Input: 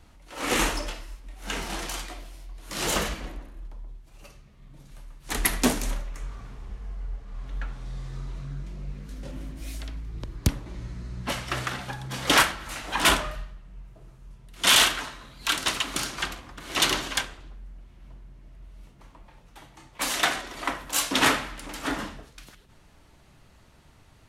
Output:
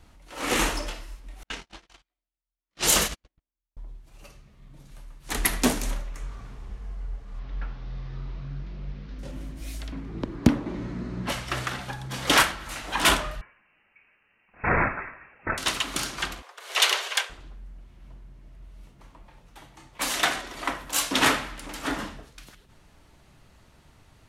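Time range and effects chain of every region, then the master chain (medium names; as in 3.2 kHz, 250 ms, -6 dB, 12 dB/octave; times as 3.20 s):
1.43–3.77 s: gate -30 dBFS, range -52 dB + level-controlled noise filter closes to 3 kHz, open at -24.5 dBFS + treble shelf 3.2 kHz +11.5 dB
7.39–9.19 s: one-bit delta coder 32 kbps, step -46.5 dBFS + distance through air 170 m
9.92–11.27 s: peaking EQ 250 Hz +12.5 dB 1.4 oct + overdrive pedal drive 16 dB, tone 1.3 kHz, clips at -0.5 dBFS
13.41–15.58 s: high-pass 450 Hz + frequency inversion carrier 2.9 kHz
16.42–17.30 s: Chebyshev high-pass 420 Hz, order 5 + dynamic bell 2.4 kHz, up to +4 dB, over -38 dBFS, Q 1
whole clip: none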